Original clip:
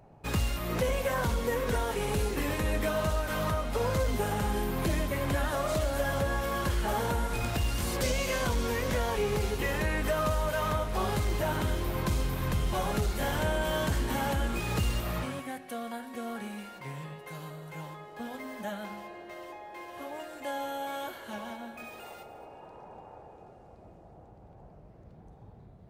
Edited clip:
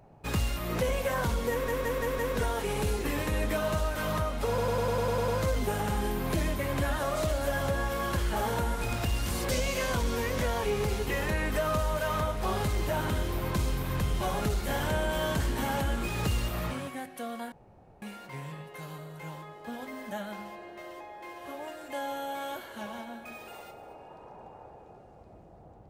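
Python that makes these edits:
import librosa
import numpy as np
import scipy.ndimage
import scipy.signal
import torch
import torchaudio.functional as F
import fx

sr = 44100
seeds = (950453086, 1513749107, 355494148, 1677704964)

y = fx.edit(x, sr, fx.stutter(start_s=1.51, slice_s=0.17, count=5),
    fx.stutter(start_s=3.8, slice_s=0.1, count=9),
    fx.room_tone_fill(start_s=16.04, length_s=0.5), tone=tone)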